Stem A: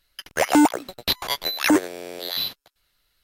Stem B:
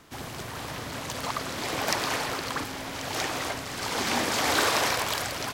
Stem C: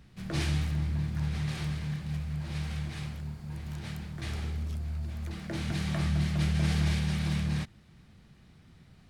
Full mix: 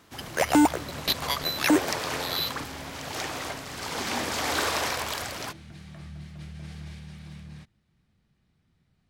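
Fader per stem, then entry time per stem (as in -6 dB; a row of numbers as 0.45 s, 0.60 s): -3.5 dB, -3.0 dB, -13.5 dB; 0.00 s, 0.00 s, 0.00 s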